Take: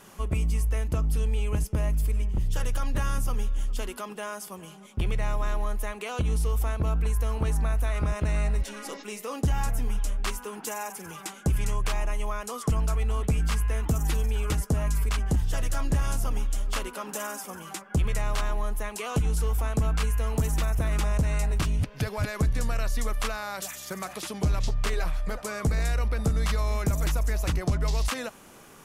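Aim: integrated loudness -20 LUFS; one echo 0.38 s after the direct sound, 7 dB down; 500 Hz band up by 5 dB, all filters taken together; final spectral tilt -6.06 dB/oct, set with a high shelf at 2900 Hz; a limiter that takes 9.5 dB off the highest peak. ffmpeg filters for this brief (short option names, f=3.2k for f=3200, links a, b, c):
-af "equalizer=f=500:t=o:g=6.5,highshelf=f=2.9k:g=-6.5,alimiter=limit=-23dB:level=0:latency=1,aecho=1:1:380:0.447,volume=12dB"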